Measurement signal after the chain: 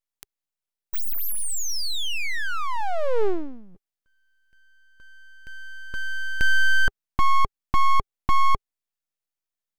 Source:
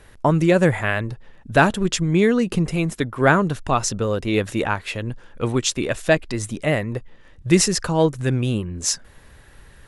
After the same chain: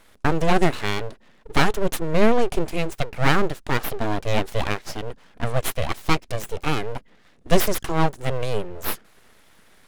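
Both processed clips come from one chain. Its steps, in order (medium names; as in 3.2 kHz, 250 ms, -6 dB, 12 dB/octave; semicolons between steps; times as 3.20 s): resonant low shelf 140 Hz -13 dB, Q 3; full-wave rectifier; trim -1.5 dB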